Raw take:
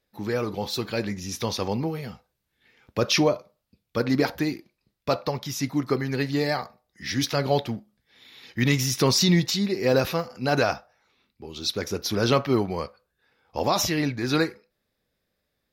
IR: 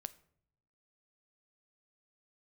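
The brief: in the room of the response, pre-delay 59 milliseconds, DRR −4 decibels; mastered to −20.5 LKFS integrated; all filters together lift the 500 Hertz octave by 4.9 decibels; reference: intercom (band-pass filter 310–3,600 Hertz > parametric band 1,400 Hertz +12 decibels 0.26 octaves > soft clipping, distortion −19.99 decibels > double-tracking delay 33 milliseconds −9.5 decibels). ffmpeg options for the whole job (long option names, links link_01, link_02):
-filter_complex "[0:a]equalizer=frequency=500:width_type=o:gain=6.5,asplit=2[link_01][link_02];[1:a]atrim=start_sample=2205,adelay=59[link_03];[link_02][link_03]afir=irnorm=-1:irlink=0,volume=7.5dB[link_04];[link_01][link_04]amix=inputs=2:normalize=0,highpass=310,lowpass=3600,equalizer=frequency=1400:width_type=o:width=0.26:gain=12,asoftclip=threshold=-4dB,asplit=2[link_05][link_06];[link_06]adelay=33,volume=-9.5dB[link_07];[link_05][link_07]amix=inputs=2:normalize=0,volume=-1.5dB"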